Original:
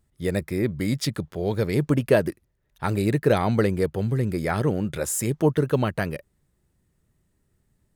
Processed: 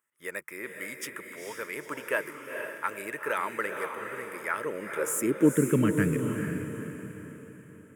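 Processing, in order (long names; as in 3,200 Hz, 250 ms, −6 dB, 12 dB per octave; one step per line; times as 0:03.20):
phaser with its sweep stopped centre 1,800 Hz, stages 4
high-pass filter sweep 800 Hz → 110 Hz, 0:04.46–0:06.23
feedback delay with all-pass diffusion 465 ms, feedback 45%, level −5.5 dB
level −1.5 dB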